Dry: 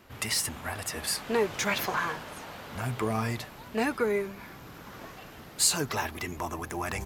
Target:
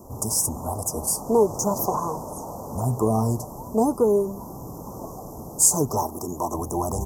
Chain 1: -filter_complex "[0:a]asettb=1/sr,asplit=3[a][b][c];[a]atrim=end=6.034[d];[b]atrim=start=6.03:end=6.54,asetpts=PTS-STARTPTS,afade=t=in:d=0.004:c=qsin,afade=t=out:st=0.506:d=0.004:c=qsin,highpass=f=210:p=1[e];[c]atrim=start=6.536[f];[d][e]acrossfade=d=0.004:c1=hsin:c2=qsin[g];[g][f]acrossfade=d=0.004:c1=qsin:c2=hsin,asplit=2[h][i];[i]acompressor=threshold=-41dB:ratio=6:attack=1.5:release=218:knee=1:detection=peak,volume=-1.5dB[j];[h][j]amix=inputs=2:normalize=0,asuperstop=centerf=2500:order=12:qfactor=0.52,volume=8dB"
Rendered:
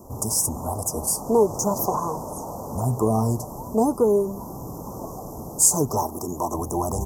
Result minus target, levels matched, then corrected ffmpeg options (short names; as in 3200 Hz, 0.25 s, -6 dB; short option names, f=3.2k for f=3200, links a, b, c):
compressor: peak gain reduction -6 dB
-filter_complex "[0:a]asettb=1/sr,asplit=3[a][b][c];[a]atrim=end=6.034[d];[b]atrim=start=6.03:end=6.54,asetpts=PTS-STARTPTS,afade=t=in:d=0.004:c=qsin,afade=t=out:st=0.506:d=0.004:c=qsin,highpass=f=210:p=1[e];[c]atrim=start=6.536[f];[d][e]acrossfade=d=0.004:c1=hsin:c2=qsin[g];[g][f]acrossfade=d=0.004:c1=qsin:c2=hsin,asplit=2[h][i];[i]acompressor=threshold=-48dB:ratio=6:attack=1.5:release=218:knee=1:detection=peak,volume=-1.5dB[j];[h][j]amix=inputs=2:normalize=0,asuperstop=centerf=2500:order=12:qfactor=0.52,volume=8dB"